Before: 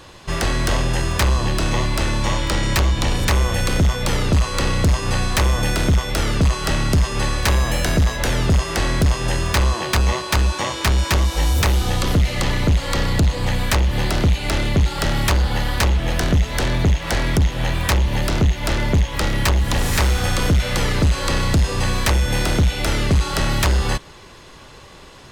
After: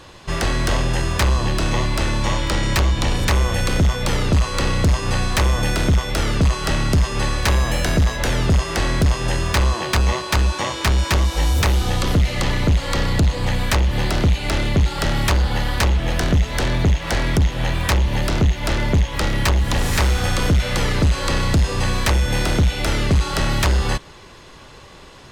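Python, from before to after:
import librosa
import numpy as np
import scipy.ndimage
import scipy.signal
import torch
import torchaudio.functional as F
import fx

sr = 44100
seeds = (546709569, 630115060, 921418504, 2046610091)

y = fx.high_shelf(x, sr, hz=10000.0, db=-4.5)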